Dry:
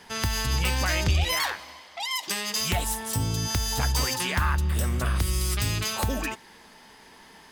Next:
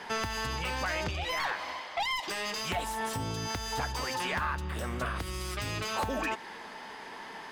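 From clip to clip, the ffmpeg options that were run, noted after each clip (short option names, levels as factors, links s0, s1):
-filter_complex "[0:a]acompressor=threshold=0.0282:ratio=6,asplit=2[s0][s1];[s1]highpass=f=720:p=1,volume=7.94,asoftclip=type=tanh:threshold=0.141[s2];[s0][s2]amix=inputs=2:normalize=0,lowpass=f=1300:p=1,volume=0.501"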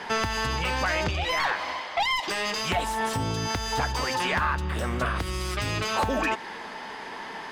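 -af "highshelf=f=10000:g=-8.5,volume=2.11"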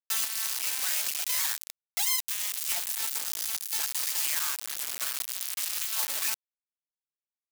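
-af "acrusher=bits=3:mix=0:aa=0.000001,aderivative"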